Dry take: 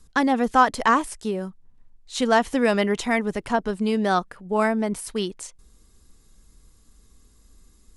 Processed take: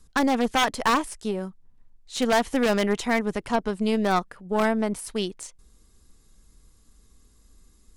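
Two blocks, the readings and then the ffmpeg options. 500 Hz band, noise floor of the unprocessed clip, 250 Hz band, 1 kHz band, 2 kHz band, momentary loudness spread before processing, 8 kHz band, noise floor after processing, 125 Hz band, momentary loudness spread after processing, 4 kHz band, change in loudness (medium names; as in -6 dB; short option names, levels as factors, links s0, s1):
-1.5 dB, -57 dBFS, -1.5 dB, -3.5 dB, -2.5 dB, 12 LU, 0.0 dB, -58 dBFS, -1.0 dB, 10 LU, +2.0 dB, -2.0 dB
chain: -af "aeval=exprs='0.596*(cos(1*acos(clip(val(0)/0.596,-1,1)))-cos(1*PI/2))+0.0299*(cos(3*acos(clip(val(0)/0.596,-1,1)))-cos(3*PI/2))+0.0668*(cos(4*acos(clip(val(0)/0.596,-1,1)))-cos(4*PI/2))+0.00376*(cos(7*acos(clip(val(0)/0.596,-1,1)))-cos(7*PI/2))':c=same,aeval=exprs='0.251*(abs(mod(val(0)/0.251+3,4)-2)-1)':c=same"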